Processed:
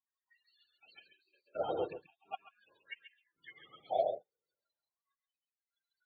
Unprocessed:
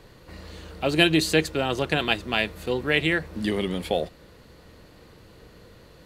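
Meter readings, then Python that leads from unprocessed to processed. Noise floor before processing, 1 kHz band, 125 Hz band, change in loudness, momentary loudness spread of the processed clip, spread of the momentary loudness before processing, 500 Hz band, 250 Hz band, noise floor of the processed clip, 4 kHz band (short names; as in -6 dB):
-51 dBFS, -9.5 dB, -31.0 dB, -15.5 dB, 22 LU, 12 LU, -12.5 dB, -28.0 dB, under -85 dBFS, -29.5 dB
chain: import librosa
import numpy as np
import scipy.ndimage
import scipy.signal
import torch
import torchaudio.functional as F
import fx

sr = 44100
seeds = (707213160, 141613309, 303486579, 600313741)

p1 = fx.whisperise(x, sr, seeds[0])
p2 = fx.graphic_eq_10(p1, sr, hz=(250, 500, 4000), db=(-9, -10, 8))
p3 = fx.gate_flip(p2, sr, shuts_db=-12.0, range_db=-27)
p4 = fx.tilt_eq(p3, sr, slope=-4.5)
p5 = fx.spec_topn(p4, sr, count=32)
p6 = fx.noise_reduce_blind(p5, sr, reduce_db=27)
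p7 = p6 + fx.echo_single(p6, sr, ms=136, db=-6.0, dry=0)
p8 = fx.hpss(p7, sr, part='percussive', gain_db=-9)
p9 = fx.filter_lfo_highpass(p8, sr, shape='sine', hz=0.4, low_hz=470.0, high_hz=2700.0, q=4.0)
p10 = fx.upward_expand(p9, sr, threshold_db=-47.0, expansion=1.5)
y = F.gain(torch.from_numpy(p10), -2.5).numpy()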